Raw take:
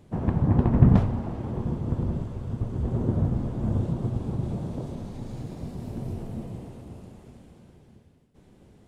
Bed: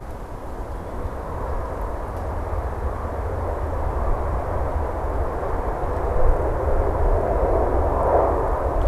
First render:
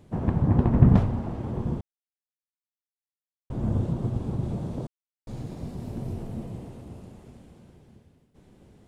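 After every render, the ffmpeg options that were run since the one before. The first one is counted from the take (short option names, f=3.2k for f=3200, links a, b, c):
-filter_complex "[0:a]asplit=5[a][b][c][d][e];[a]atrim=end=1.81,asetpts=PTS-STARTPTS,afade=t=out:st=1.806:d=0.004:c=hsin[f];[b]atrim=start=1.81:end=3.5,asetpts=PTS-STARTPTS,volume=0[g];[c]atrim=start=3.5:end=4.87,asetpts=PTS-STARTPTS,afade=t=in:d=0.004:c=hsin,afade=t=out:st=1.366:d=0.004:c=hsin[h];[d]atrim=start=4.87:end=5.27,asetpts=PTS-STARTPTS,volume=0[i];[e]atrim=start=5.27,asetpts=PTS-STARTPTS,afade=t=in:d=0.004:c=hsin[j];[f][g][h][i][j]concat=n=5:v=0:a=1"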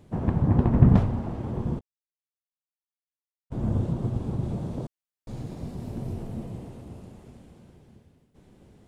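-filter_complex "[0:a]asettb=1/sr,asplit=3[a][b][c];[a]atrim=end=1.794[d];[b]atrim=start=1.79:end=3.52,asetpts=PTS-STARTPTS,afade=t=in:d=0.004:c=qsin,afade=t=out:st=1.726:d=0.004:c=qsin,agate=range=-33dB:threshold=-25dB:ratio=3:release=100:detection=peak[e];[c]atrim=start=3.516[f];[d][e]acrossfade=d=0.004:c1=hsin:c2=qsin[g];[g][f]acrossfade=d=0.004:c1=qsin:c2=hsin"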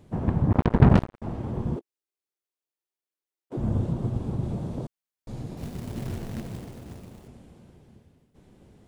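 -filter_complex "[0:a]asettb=1/sr,asplit=3[a][b][c];[a]atrim=end=0.524[d];[b]atrim=start=0.52:end=1.22,asetpts=PTS-STARTPTS,afade=t=in:d=0.004:c=qsin,afade=t=out:st=0.696:d=0.004:c=qsin,acrusher=bits=2:mix=0:aa=0.5[e];[c]atrim=start=1.216[f];[d][e]acrossfade=d=0.004:c1=hsin:c2=qsin[g];[g][f]acrossfade=d=0.004:c1=qsin:c2=hsin,asettb=1/sr,asplit=3[h][i][j];[h]atrim=end=1.764[k];[i]atrim=start=1.76:end=3.57,asetpts=PTS-STARTPTS,afade=t=in:d=0.004:c=qsin,afade=t=out:st=1.806:d=0.004:c=qsin,highpass=f=350:t=q:w=3.2[l];[j]atrim=start=3.566[m];[k][l]acrossfade=d=0.004:c1=hsin:c2=qsin[n];[n][m]acrossfade=d=0.004:c1=qsin:c2=hsin,asettb=1/sr,asplit=3[o][p][q];[o]atrim=end=5.574[r];[p]atrim=start=5.57:end=7.28,asetpts=PTS-STARTPTS,afade=t=in:d=0.004:c=qsin,afade=t=out:st=1.706:d=0.004:c=qsin,acrusher=bits=3:mode=log:mix=0:aa=0.000001[s];[q]atrim=start=7.276[t];[r][s]acrossfade=d=0.004:c1=hsin:c2=qsin[u];[u][t]acrossfade=d=0.004:c1=qsin:c2=hsin"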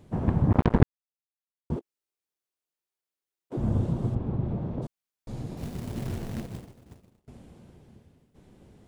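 -filter_complex "[0:a]asplit=3[a][b][c];[a]afade=t=out:st=4.14:d=0.02[d];[b]lowpass=2.3k,afade=t=in:st=4.14:d=0.02,afade=t=out:st=4.81:d=0.02[e];[c]afade=t=in:st=4.81:d=0.02[f];[d][e][f]amix=inputs=3:normalize=0,asettb=1/sr,asplit=3[g][h][i];[g]atrim=end=6.464[j];[h]atrim=start=6.46:end=7.28,asetpts=PTS-STARTPTS,afade=t=in:d=0.004:c=qsin,afade=t=out:st=0.816:d=0.004:c=qsin,agate=range=-33dB:threshold=-34dB:ratio=3:release=100:detection=peak[k];[i]atrim=start=7.276[l];[j][k]acrossfade=d=0.004:c1=hsin:c2=qsin[m];[m][l]acrossfade=d=0.004:c1=qsin:c2=hsin,asplit=3[n][o][p];[n]atrim=end=0.83,asetpts=PTS-STARTPTS,afade=t=out:st=0.826:d=0.004:c=hsin[q];[o]atrim=start=0.83:end=1.7,asetpts=PTS-STARTPTS,volume=0[r];[p]atrim=start=1.7,asetpts=PTS-STARTPTS,afade=t=in:d=0.004:c=hsin[s];[q][r][s]concat=n=3:v=0:a=1"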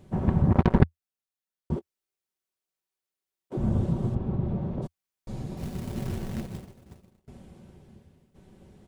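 -af "equalizer=f=83:w=2.9:g=6,aecho=1:1:5.3:0.36"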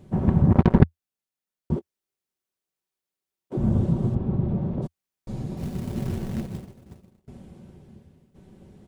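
-af "equalizer=f=190:t=o:w=2.8:g=4.5"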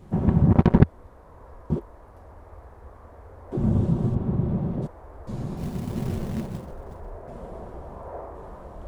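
-filter_complex "[1:a]volume=-19.5dB[a];[0:a][a]amix=inputs=2:normalize=0"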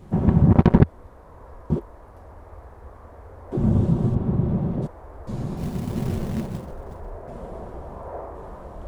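-af "volume=2.5dB,alimiter=limit=-2dB:level=0:latency=1"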